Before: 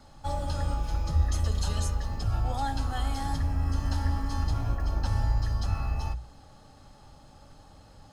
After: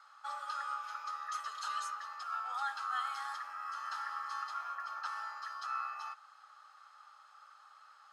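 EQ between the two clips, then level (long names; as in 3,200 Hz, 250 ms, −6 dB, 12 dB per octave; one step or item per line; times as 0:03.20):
four-pole ladder high-pass 1,200 Hz, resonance 80%
high-shelf EQ 6,400 Hz −9 dB
+7.0 dB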